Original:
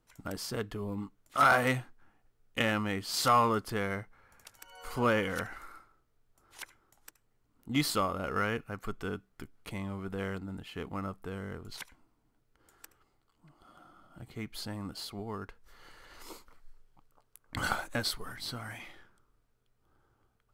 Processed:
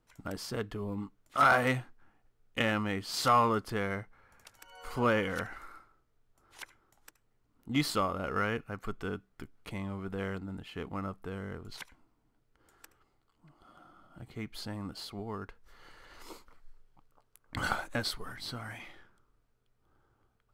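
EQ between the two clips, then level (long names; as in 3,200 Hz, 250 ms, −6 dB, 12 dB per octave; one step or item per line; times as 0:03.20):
high-shelf EQ 6,500 Hz −6 dB
0.0 dB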